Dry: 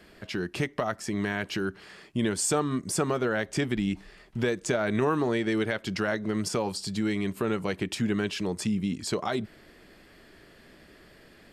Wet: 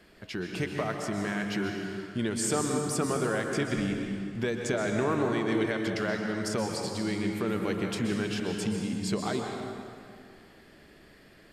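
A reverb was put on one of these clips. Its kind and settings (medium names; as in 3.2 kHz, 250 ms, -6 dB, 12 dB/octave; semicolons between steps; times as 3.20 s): plate-style reverb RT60 2.3 s, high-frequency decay 0.7×, pre-delay 110 ms, DRR 2 dB; trim -3.5 dB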